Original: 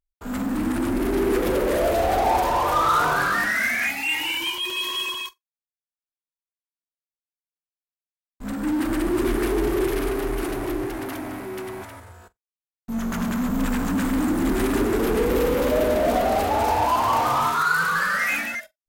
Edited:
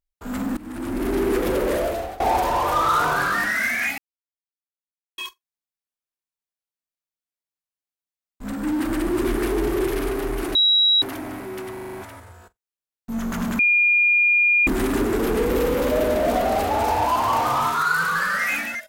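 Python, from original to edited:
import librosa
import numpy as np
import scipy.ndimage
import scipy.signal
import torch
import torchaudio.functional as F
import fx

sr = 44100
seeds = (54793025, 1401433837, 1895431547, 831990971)

y = fx.edit(x, sr, fx.fade_in_from(start_s=0.57, length_s=0.53, floor_db=-20.5),
    fx.fade_out_to(start_s=1.72, length_s=0.48, floor_db=-23.0),
    fx.silence(start_s=3.98, length_s=1.2),
    fx.bleep(start_s=10.55, length_s=0.47, hz=3870.0, db=-13.5),
    fx.stutter(start_s=11.73, slice_s=0.04, count=6),
    fx.bleep(start_s=13.39, length_s=1.08, hz=2420.0, db=-14.0), tone=tone)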